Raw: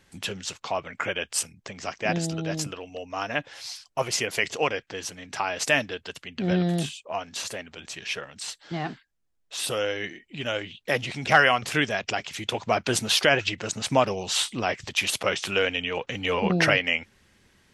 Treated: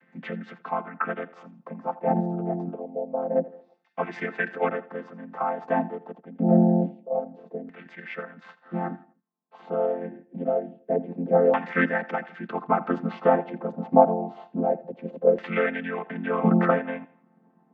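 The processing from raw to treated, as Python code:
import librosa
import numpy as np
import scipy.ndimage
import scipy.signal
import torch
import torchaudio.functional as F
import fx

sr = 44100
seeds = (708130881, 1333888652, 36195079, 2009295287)

y = fx.chord_vocoder(x, sr, chord='major triad', root=53)
y = fx.echo_feedback(y, sr, ms=83, feedback_pct=37, wet_db=-18.0)
y = fx.filter_lfo_lowpass(y, sr, shape='saw_down', hz=0.26, low_hz=470.0, high_hz=2000.0, q=3.1)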